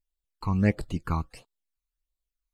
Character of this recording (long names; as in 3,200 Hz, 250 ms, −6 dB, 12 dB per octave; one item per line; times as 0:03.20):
phaser sweep stages 12, 1.5 Hz, lowest notch 530–2,100 Hz